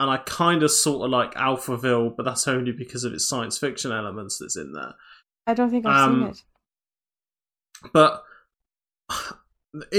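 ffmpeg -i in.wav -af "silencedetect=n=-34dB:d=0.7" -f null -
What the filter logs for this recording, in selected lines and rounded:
silence_start: 6.39
silence_end: 7.75 | silence_duration: 1.36
silence_start: 8.19
silence_end: 9.10 | silence_duration: 0.90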